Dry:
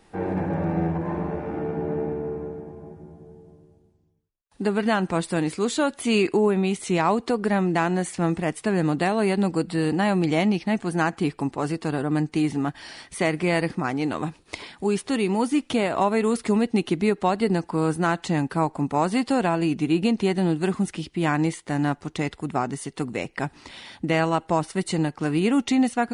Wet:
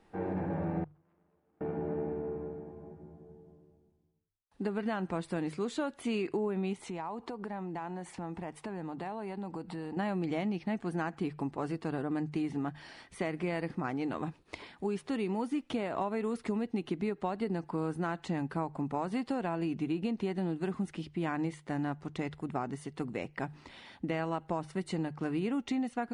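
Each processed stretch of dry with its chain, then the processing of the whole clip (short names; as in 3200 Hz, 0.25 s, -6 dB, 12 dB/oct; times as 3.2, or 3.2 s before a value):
0.84–1.61 self-modulated delay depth 0.57 ms + gate -21 dBFS, range -36 dB
6.73–9.97 bell 890 Hz +9.5 dB 0.46 oct + compressor 5:1, threshold -29 dBFS
whole clip: high shelf 4200 Hz -11.5 dB; notches 50/100/150 Hz; compressor, threshold -22 dBFS; gain -7 dB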